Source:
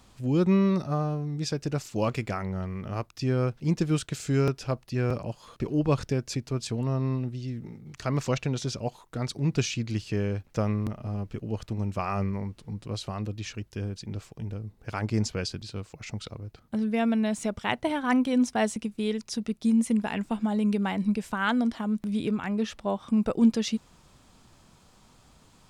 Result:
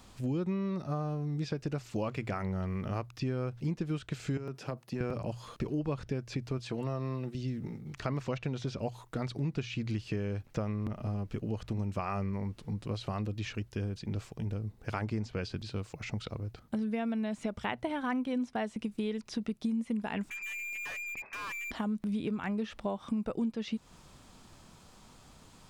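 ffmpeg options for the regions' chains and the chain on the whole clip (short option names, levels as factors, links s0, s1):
-filter_complex "[0:a]asettb=1/sr,asplit=3[s0][s1][s2];[s0]atrim=end=4.374[s3];[s1]atrim=start=4.37:end=5.01,asetpts=PTS-STARTPTS,afade=t=in:d=0.004:c=qsin,afade=t=out:st=0.636:d=0.004:c=qsin,highpass=f=130:w=0.5412,highpass=f=130:w=1.3066,equalizer=f=3800:t=o:w=2.3:g=-5,acompressor=threshold=0.0316:ratio=12:attack=3.2:release=140:knee=1:detection=peak[s4];[s2]atrim=start=5.006[s5];[s3][s4]acrossfade=d=0.004:c1=hsin:c2=qsin[s6];[s6][s5]acrossfade=d=0.004:c1=qsin:c2=hsin,asettb=1/sr,asplit=3[s7][s8][s9];[s7]atrim=end=6.584[s10];[s8]atrim=start=6.58:end=7.35,asetpts=PTS-STARTPTS,afade=t=in:d=0.004:c=qsin,afade=t=out:st=0.766:d=0.004:c=qsin,highpass=f=220:p=1,aecho=1:1:5.9:0.36,atrim=end_sample=33957[s11];[s9]atrim=start=7.346[s12];[s10][s11]acrossfade=d=0.004:c1=hsin:c2=qsin[s13];[s13][s12]acrossfade=d=0.004:c1=qsin:c2=hsin,asettb=1/sr,asplit=3[s14][s15][s16];[s14]atrim=end=20.304[s17];[s15]atrim=start=20.3:end=21.71,asetpts=PTS-STARTPTS,afade=t=in:d=0.004:c=qsin,afade=t=out:st=1.406:d=0.004:c=qsin,lowpass=f=2200:t=q:w=0.5098,lowpass=f=2200:t=q:w=0.6013,lowpass=f=2200:t=q:w=0.9,lowpass=f=2200:t=q:w=2.563,afreqshift=-2600,aeval=exprs='(tanh(89.1*val(0)+0.15)-tanh(0.15))/89.1':c=same[s18];[s16]atrim=start=21.706[s19];[s17][s18]acrossfade=d=0.004:c1=hsin:c2=qsin[s20];[s20][s19]acrossfade=d=0.004:c1=qsin:c2=hsin,acrossover=split=3700[s21][s22];[s22]acompressor=threshold=0.00224:ratio=4:attack=1:release=60[s23];[s21][s23]amix=inputs=2:normalize=0,bandreject=f=60:t=h:w=6,bandreject=f=120:t=h:w=6,acompressor=threshold=0.0251:ratio=6,volume=1.19"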